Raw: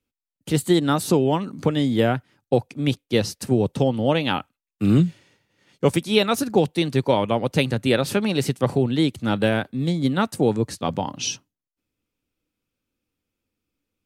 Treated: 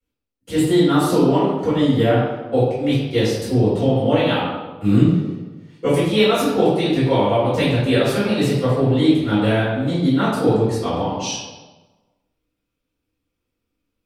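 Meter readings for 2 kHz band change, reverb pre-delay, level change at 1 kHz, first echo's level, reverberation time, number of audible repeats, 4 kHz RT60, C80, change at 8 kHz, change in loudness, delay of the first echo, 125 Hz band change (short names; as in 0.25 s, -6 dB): +2.5 dB, 3 ms, +3.5 dB, none, 1.3 s, none, 0.85 s, 2.5 dB, -1.0 dB, +4.0 dB, none, +4.0 dB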